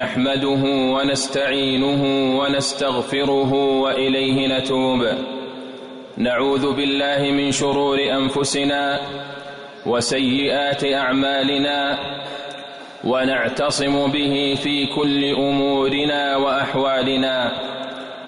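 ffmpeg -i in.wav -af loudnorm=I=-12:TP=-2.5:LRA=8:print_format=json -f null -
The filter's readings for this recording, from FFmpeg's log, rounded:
"input_i" : "-19.2",
"input_tp" : "-9.9",
"input_lra" : "1.5",
"input_thresh" : "-29.6",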